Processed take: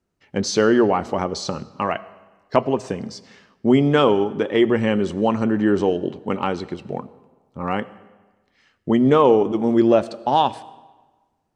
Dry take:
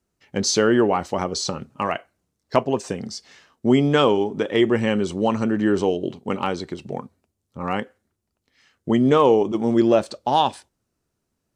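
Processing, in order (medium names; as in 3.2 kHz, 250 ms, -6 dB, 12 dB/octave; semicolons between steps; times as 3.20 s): treble shelf 5.1 kHz -11 dB; hum notches 60/120 Hz; on a send: reverberation RT60 1.3 s, pre-delay 45 ms, DRR 18.5 dB; on the sum: trim +1.5 dB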